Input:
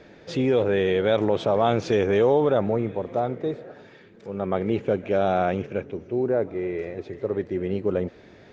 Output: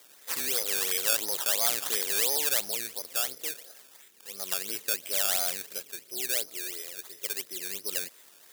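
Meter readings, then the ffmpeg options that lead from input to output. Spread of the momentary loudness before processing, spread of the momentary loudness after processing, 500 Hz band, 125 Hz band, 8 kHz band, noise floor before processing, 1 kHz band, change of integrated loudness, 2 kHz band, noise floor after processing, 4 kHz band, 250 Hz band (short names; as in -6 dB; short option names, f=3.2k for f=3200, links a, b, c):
11 LU, 13 LU, -19.0 dB, under -25 dB, n/a, -50 dBFS, -13.5 dB, -3.5 dB, -1.0 dB, -56 dBFS, +8.0 dB, -23.5 dB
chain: -af "aexciter=amount=4.8:drive=3.9:freq=3.3k,acrusher=samples=15:mix=1:aa=0.000001:lfo=1:lforange=15:lforate=2.9,aderivative,volume=4.5dB"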